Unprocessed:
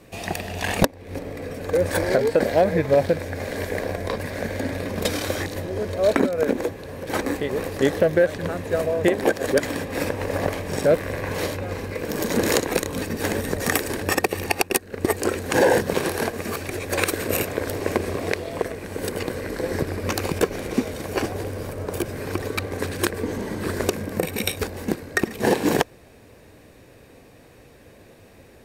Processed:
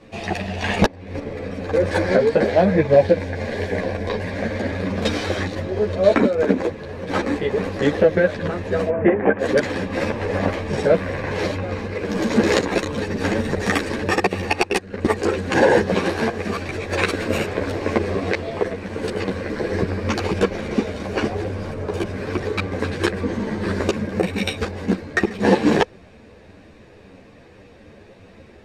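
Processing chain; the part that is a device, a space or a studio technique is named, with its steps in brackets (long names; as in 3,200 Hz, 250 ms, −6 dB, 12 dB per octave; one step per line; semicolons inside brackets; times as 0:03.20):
0:02.83–0:04.37: notch filter 1,300 Hz, Q 5.8
0:08.89–0:09.39: inverse Chebyshev low-pass filter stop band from 4,400 Hz, stop band 40 dB
string-machine ensemble chorus (string-ensemble chorus; low-pass filter 4,700 Hz 12 dB per octave)
parametric band 190 Hz +5 dB 0.26 octaves
level +6 dB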